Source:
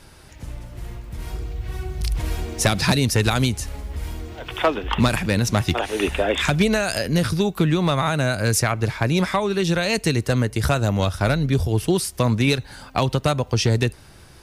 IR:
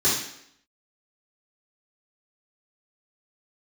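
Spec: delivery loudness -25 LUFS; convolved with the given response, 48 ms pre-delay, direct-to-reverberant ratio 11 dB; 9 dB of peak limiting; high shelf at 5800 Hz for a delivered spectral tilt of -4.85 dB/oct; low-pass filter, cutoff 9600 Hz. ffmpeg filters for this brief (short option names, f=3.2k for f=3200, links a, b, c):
-filter_complex "[0:a]lowpass=9.6k,highshelf=f=5.8k:g=4.5,alimiter=limit=-15.5dB:level=0:latency=1,asplit=2[a][b];[1:a]atrim=start_sample=2205,adelay=48[c];[b][c]afir=irnorm=-1:irlink=0,volume=-26dB[d];[a][d]amix=inputs=2:normalize=0"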